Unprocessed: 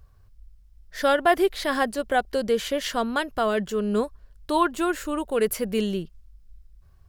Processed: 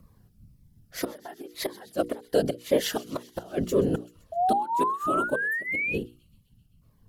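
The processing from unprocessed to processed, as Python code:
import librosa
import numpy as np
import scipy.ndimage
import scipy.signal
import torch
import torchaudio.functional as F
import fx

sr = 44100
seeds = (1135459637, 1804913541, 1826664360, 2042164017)

p1 = fx.gate_flip(x, sr, shuts_db=-15.0, range_db=-26)
p2 = scipy.signal.sosfilt(scipy.signal.butter(2, 45.0, 'highpass', fs=sr, output='sos'), p1)
p3 = fx.peak_eq(p2, sr, hz=12000.0, db=9.0, octaves=0.47)
p4 = p3 + fx.echo_wet_highpass(p3, sr, ms=129, feedback_pct=71, hz=2900.0, wet_db=-17.0, dry=0)
p5 = fx.whisperise(p4, sr, seeds[0])
p6 = fx.spec_paint(p5, sr, seeds[1], shape='rise', start_s=4.32, length_s=1.66, low_hz=660.0, high_hz=2600.0, level_db=-24.0)
p7 = fx.rider(p6, sr, range_db=4, speed_s=2.0)
p8 = p6 + (p7 * librosa.db_to_amplitude(1.0))
p9 = fx.peak_eq(p8, sr, hz=480.0, db=6.0, octaves=2.3)
p10 = fx.hum_notches(p9, sr, base_hz=60, count=8)
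p11 = fx.notch_cascade(p10, sr, direction='falling', hz=1.9)
y = p11 * librosa.db_to_amplitude(-8.5)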